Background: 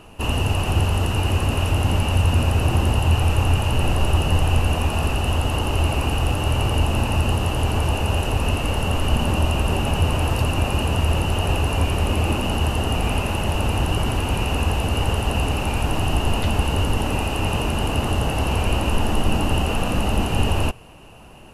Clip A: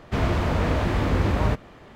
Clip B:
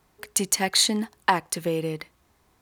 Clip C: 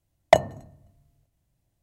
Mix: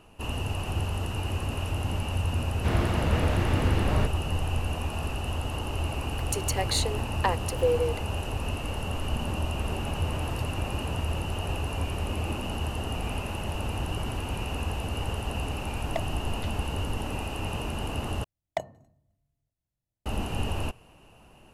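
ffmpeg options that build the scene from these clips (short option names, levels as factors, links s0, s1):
-filter_complex "[1:a]asplit=2[s0][s1];[3:a]asplit=2[s2][s3];[0:a]volume=0.316[s4];[s0]equalizer=f=1000:w=7.3:g=-3.5[s5];[2:a]highpass=f=480:t=q:w=4.3[s6];[s1]acompressor=threshold=0.0501:ratio=6:attack=3.2:release=140:knee=1:detection=peak[s7];[s4]asplit=2[s8][s9];[s8]atrim=end=18.244[s10];[s3]atrim=end=1.82,asetpts=PTS-STARTPTS,volume=0.178[s11];[s9]atrim=start=20.056[s12];[s5]atrim=end=1.95,asetpts=PTS-STARTPTS,volume=0.631,afade=t=in:d=0.004:c=hsin,afade=t=out:st=1.946:d=0.004:c=hsin,adelay=2520[s13];[s6]atrim=end=2.61,asetpts=PTS-STARTPTS,volume=0.376,afade=t=in:d=0.004:c=hsin,afade=t=out:st=2.606:d=0.004:c=hsin,adelay=5960[s14];[s7]atrim=end=1.95,asetpts=PTS-STARTPTS,volume=0.237,afade=t=in:d=0.004:c=hsin,afade=t=out:st=1.946:d=0.004:c=hsin,adelay=9480[s15];[s2]atrim=end=1.82,asetpts=PTS-STARTPTS,volume=0.141,afade=t=in:d=0.004:c=hsin,afade=t=out:st=1.816:d=0.004:c=hsin,adelay=15630[s16];[s10][s11]acrossfade=d=0.004:c1=hsin:c2=hsin[s17];[s17][s12]acrossfade=d=0.004:c1=hsin:c2=hsin[s18];[s18][s13][s14][s15][s16]amix=inputs=5:normalize=0"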